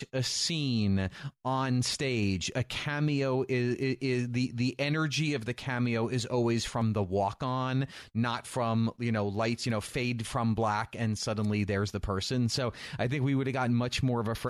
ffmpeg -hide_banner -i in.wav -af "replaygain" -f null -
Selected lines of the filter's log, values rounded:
track_gain = +12.8 dB
track_peak = 0.079